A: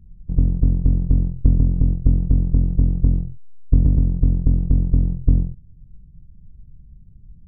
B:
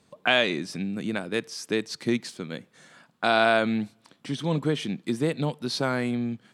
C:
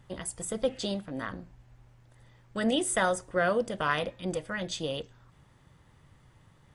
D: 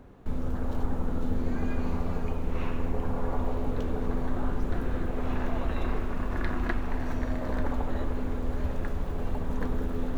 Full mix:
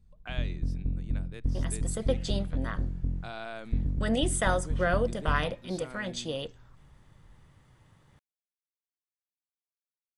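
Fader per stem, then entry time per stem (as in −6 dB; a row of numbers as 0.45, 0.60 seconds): −14.5 dB, −19.5 dB, −1.0 dB, muted; 0.00 s, 0.00 s, 1.45 s, muted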